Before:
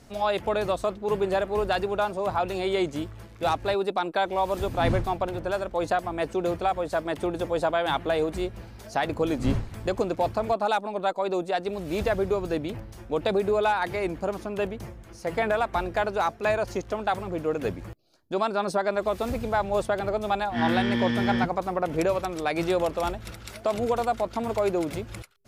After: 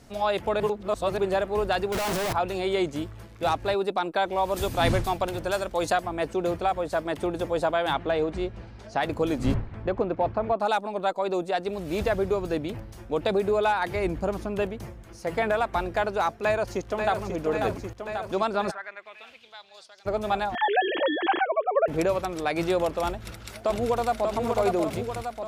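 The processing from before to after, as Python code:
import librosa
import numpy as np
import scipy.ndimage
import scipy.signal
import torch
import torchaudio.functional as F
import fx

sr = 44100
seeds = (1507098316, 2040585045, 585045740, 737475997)

y = fx.clip_1bit(x, sr, at=(1.92, 2.33))
y = fx.high_shelf(y, sr, hz=3100.0, db=11.0, at=(4.56, 5.99))
y = fx.air_absorb(y, sr, metres=97.0, at=(7.93, 9.01))
y = fx.lowpass(y, sr, hz=2200.0, slope=12, at=(9.54, 10.6))
y = fx.low_shelf(y, sr, hz=140.0, db=9.5, at=(13.95, 14.63))
y = fx.echo_throw(y, sr, start_s=16.43, length_s=0.8, ms=540, feedback_pct=75, wet_db=-5.5)
y = fx.bandpass_q(y, sr, hz=fx.line((18.7, 1600.0), (20.05, 5700.0)), q=3.6, at=(18.7, 20.05), fade=0.02)
y = fx.sine_speech(y, sr, at=(20.55, 21.88))
y = fx.echo_throw(y, sr, start_s=23.1, length_s=1.17, ms=590, feedback_pct=60, wet_db=-3.5)
y = fx.edit(y, sr, fx.reverse_span(start_s=0.6, length_s=0.58), tone=tone)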